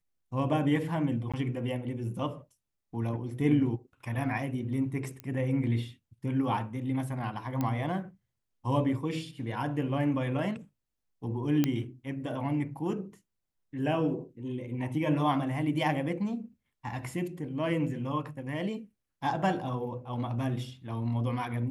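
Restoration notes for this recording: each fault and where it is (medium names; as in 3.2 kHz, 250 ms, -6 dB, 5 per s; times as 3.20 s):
1.32–1.34 s: dropout 16 ms
5.20 s: pop -23 dBFS
7.61 s: pop -18 dBFS
11.64 s: pop -13 dBFS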